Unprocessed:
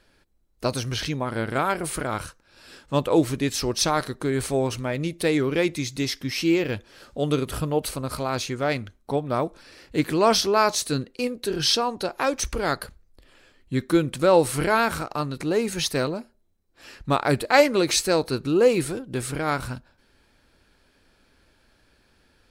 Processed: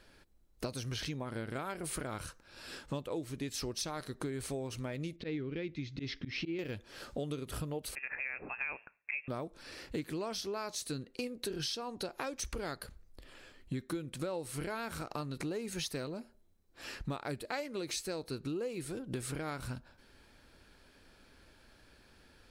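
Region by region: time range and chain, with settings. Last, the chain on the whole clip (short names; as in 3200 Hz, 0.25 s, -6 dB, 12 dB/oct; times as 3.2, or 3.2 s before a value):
5.16–6.59 bell 840 Hz -12 dB 1.5 oct + auto swell 0.116 s + Gaussian blur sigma 2.4 samples
7.95–9.28 HPF 460 Hz 24 dB/oct + inverted band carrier 3000 Hz
whole clip: dynamic EQ 1000 Hz, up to -4 dB, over -35 dBFS, Q 0.81; compressor 12:1, threshold -35 dBFS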